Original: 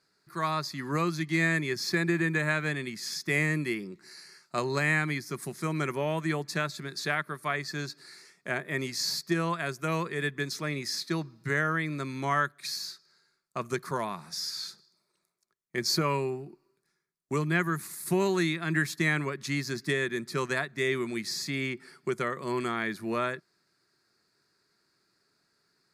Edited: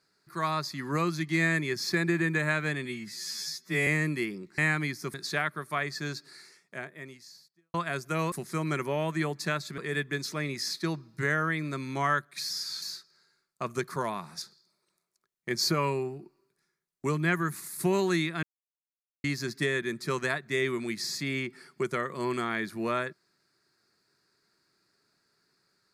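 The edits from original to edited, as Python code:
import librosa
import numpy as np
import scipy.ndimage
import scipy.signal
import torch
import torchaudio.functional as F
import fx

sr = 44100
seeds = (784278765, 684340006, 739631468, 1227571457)

y = fx.edit(x, sr, fx.stretch_span(start_s=2.85, length_s=0.51, factor=2.0),
    fx.cut(start_s=4.07, length_s=0.78),
    fx.move(start_s=5.41, length_s=1.46, to_s=10.05),
    fx.fade_out_span(start_s=8.04, length_s=1.43, curve='qua'),
    fx.move(start_s=14.37, length_s=0.32, to_s=12.77),
    fx.silence(start_s=18.7, length_s=0.81), tone=tone)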